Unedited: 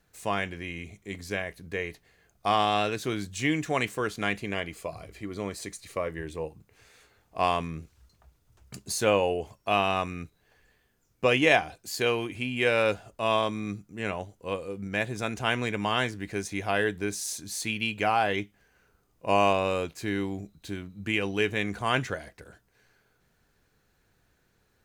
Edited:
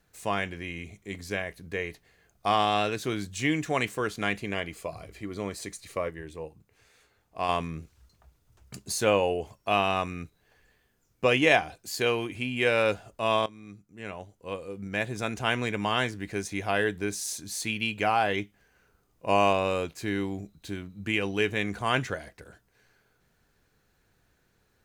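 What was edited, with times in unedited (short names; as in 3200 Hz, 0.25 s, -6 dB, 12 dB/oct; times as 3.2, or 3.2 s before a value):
6.1–7.49 gain -4.5 dB
13.46–15.18 fade in, from -17.5 dB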